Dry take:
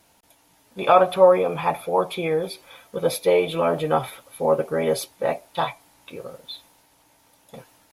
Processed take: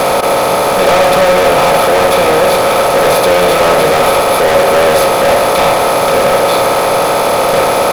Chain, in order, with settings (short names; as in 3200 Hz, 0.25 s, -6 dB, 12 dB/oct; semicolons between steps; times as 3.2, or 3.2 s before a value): per-bin compression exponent 0.2; sample leveller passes 5; de-hum 55.16 Hz, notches 39; gain -7.5 dB